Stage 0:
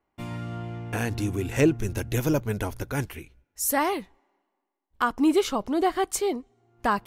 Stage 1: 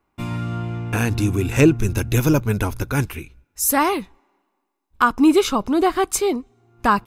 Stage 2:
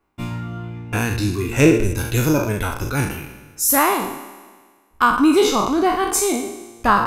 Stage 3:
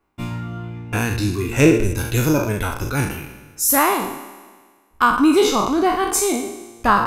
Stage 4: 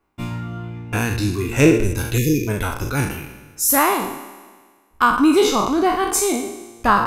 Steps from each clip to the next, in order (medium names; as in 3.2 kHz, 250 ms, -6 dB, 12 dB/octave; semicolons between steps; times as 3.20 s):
comb 0.8 ms, depth 33%; trim +6.5 dB
spectral sustain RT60 1.64 s; reverb removal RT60 0.97 s; trim -1 dB
no audible change
spectral selection erased 2.18–2.48 s, 500–1700 Hz